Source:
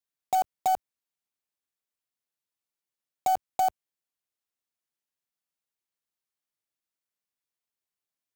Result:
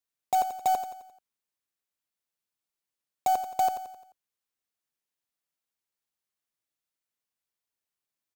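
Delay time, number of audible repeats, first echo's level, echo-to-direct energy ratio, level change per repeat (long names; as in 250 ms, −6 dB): 87 ms, 4, −10.0 dB, −9.0 dB, −6.5 dB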